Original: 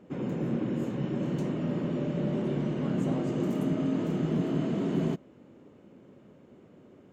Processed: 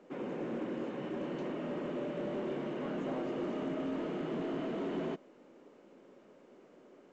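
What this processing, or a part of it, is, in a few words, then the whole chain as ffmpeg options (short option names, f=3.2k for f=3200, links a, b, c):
telephone: -af "highpass=370,lowpass=3.3k,asoftclip=type=tanh:threshold=-28.5dB" -ar 16000 -c:a pcm_mulaw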